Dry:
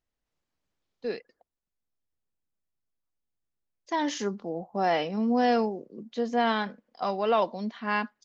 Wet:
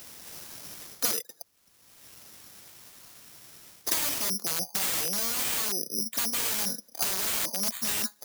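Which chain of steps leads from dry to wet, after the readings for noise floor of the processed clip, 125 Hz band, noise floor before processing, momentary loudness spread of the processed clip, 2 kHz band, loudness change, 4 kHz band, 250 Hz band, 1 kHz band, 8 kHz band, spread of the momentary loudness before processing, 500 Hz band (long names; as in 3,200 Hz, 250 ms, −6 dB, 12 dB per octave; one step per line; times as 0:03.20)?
−63 dBFS, −5.0 dB, below −85 dBFS, 15 LU, −2.5 dB, +1.5 dB, +7.5 dB, −11.5 dB, −12.0 dB, can't be measured, 12 LU, −13.5 dB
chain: wrap-around overflow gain 26.5 dB
reversed playback
downward compressor 5 to 1, threshold −42 dBFS, peak gain reduction 11.5 dB
reversed playback
high-pass filter 88 Hz 24 dB per octave
bad sample-rate conversion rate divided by 8×, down none, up zero stuff
multiband upward and downward compressor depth 100%
level +4.5 dB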